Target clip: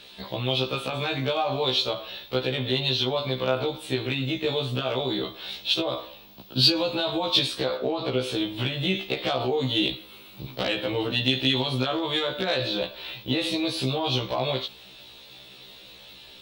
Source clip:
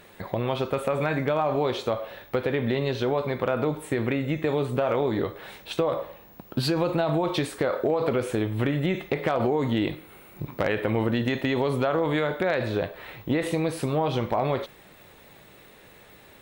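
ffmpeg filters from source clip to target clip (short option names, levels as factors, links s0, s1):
-filter_complex "[0:a]asettb=1/sr,asplit=3[s0][s1][s2];[s0]atrim=end=7.774[s3];[s1]atrim=start=7.77:end=8.24,asetpts=PTS-STARTPTS,afade=t=in:d=0.004:c=qsin,afade=t=out:st=0.466:d=0.004:c=qsin,aemphasis=mode=reproduction:type=cd[s4];[s2]atrim=start=8.236[s5];[s3][s4]acrossfade=d=0.004:c1=hsin:c2=qsin[s6];[s6][s5]acrossfade=d=0.004:c1=qsin:c2=hsin,acrossover=split=250|4300[s7][s8][s9];[s8]aexciter=amount=8:drive=8.8:freq=3000[s10];[s7][s10][s9]amix=inputs=3:normalize=0,afftfilt=real='re*1.73*eq(mod(b,3),0)':imag='im*1.73*eq(mod(b,3),0)':win_size=2048:overlap=0.75"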